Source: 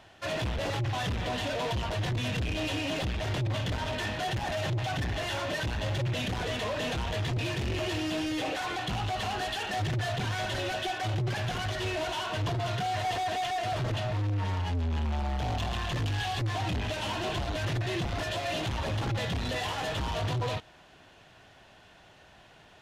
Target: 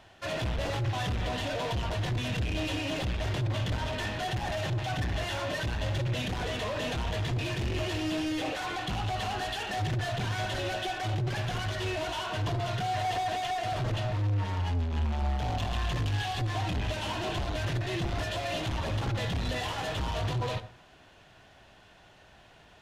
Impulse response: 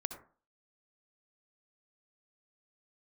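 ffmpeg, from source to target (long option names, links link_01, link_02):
-filter_complex "[0:a]asplit=2[link_01][link_02];[1:a]atrim=start_sample=2205,lowshelf=frequency=60:gain=10[link_03];[link_02][link_03]afir=irnorm=-1:irlink=0,volume=-0.5dB[link_04];[link_01][link_04]amix=inputs=2:normalize=0,volume=-6.5dB"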